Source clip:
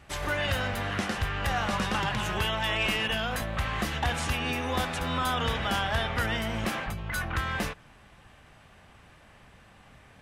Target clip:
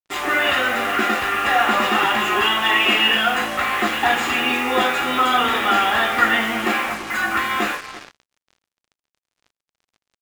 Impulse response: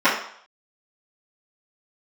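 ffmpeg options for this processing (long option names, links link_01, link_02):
-filter_complex "[0:a]asplit=2[link_01][link_02];[link_02]adelay=340,highpass=300,lowpass=3400,asoftclip=type=hard:threshold=-28dB,volume=-13dB[link_03];[link_01][link_03]amix=inputs=2:normalize=0[link_04];[1:a]atrim=start_sample=2205,asetrate=57330,aresample=44100[link_05];[link_04][link_05]afir=irnorm=-1:irlink=0,acrusher=bits=3:mix=0:aa=0.5,volume=-8dB"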